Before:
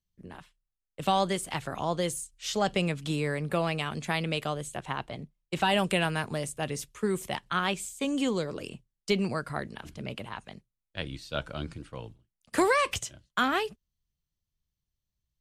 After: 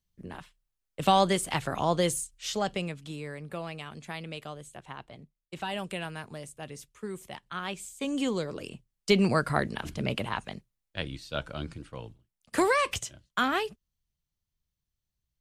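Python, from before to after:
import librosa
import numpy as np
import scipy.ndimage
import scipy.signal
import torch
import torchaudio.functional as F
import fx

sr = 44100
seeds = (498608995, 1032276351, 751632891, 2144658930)

y = fx.gain(x, sr, db=fx.line((2.2, 3.5), (3.09, -9.0), (7.46, -9.0), (8.16, -1.0), (8.71, -1.0), (9.38, 7.0), (10.38, 7.0), (11.19, -0.5)))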